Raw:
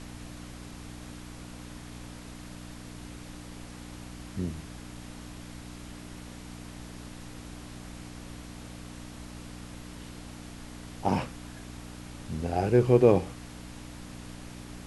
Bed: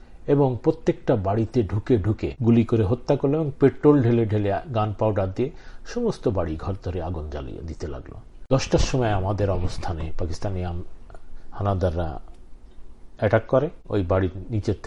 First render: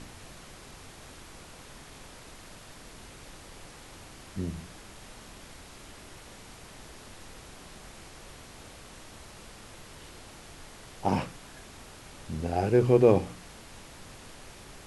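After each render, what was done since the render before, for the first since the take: de-hum 60 Hz, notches 5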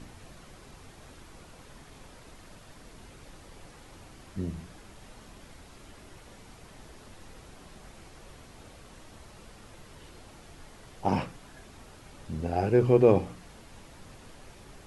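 denoiser 6 dB, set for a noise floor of -49 dBFS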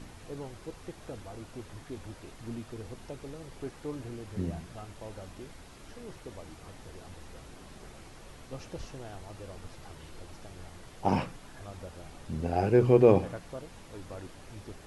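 add bed -22.5 dB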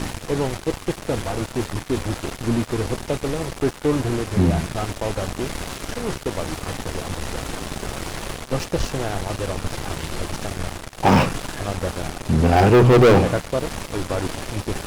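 reverse; upward compressor, threshold -38 dBFS; reverse; sample leveller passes 5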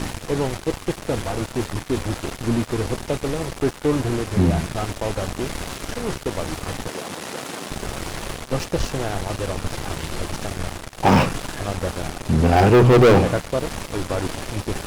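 6.88–7.7 Bessel high-pass 210 Hz, order 4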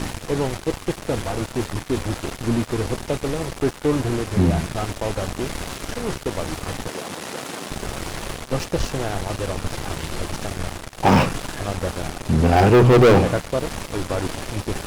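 nothing audible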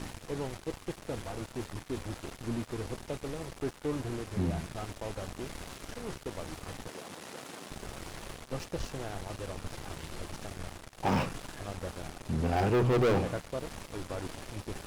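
gain -13.5 dB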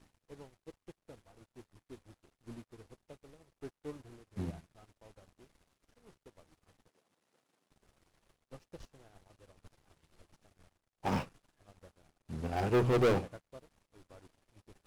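upward expander 2.5:1, over -48 dBFS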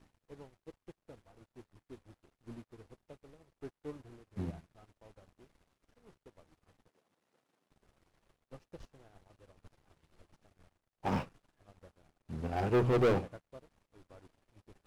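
high shelf 3800 Hz -6.5 dB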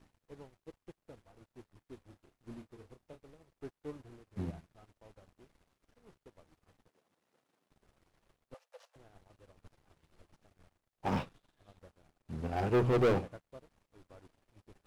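2.06–3.22 doubler 31 ms -9 dB; 8.54–8.96 steep high-pass 480 Hz 96 dB/oct; 11.17–11.79 bell 3600 Hz +7.5 dB 0.39 oct

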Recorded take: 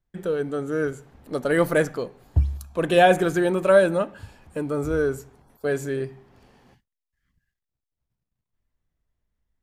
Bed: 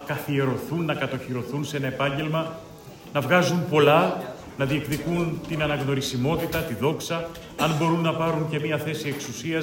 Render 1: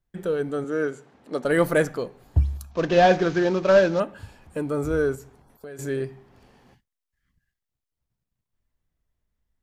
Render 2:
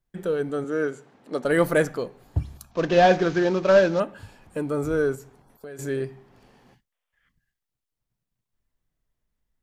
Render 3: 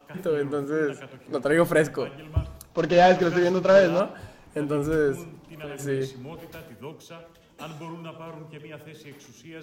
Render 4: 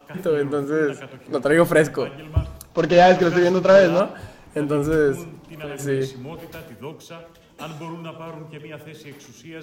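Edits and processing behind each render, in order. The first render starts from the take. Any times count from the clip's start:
0.64–1.45 BPF 200–7500 Hz; 2.71–4 CVSD 32 kbps; 5.15–5.79 compressor, threshold -37 dBFS
6.92–7.29 spectral gain 440–3600 Hz +12 dB; bell 69 Hz -12 dB 0.41 oct
add bed -16 dB
gain +4.5 dB; limiter -3 dBFS, peak gain reduction 2 dB

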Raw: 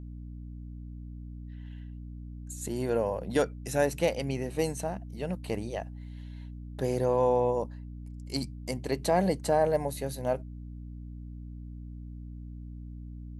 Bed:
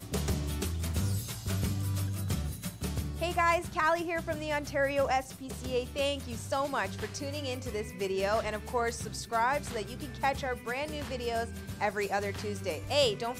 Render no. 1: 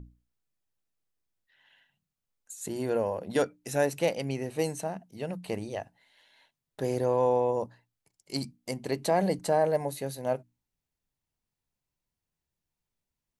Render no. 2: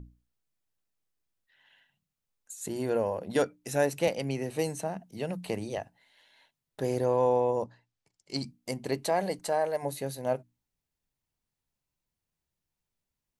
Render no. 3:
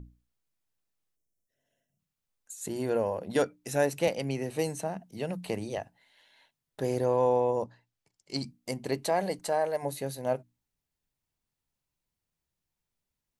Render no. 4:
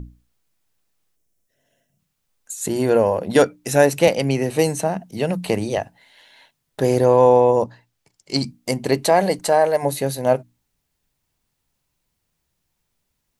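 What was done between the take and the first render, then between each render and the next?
notches 60/120/180/240/300 Hz
4.07–5.78 three-band squash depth 40%; 7.64–8.46 Chebyshev low-pass 6000 Hz; 8.99–9.82 bell 140 Hz -6 dB -> -13.5 dB 3 oct
1.16–1.99 spectral gain 720–5200 Hz -22 dB
gain +12 dB; limiter -2 dBFS, peak gain reduction 0.5 dB

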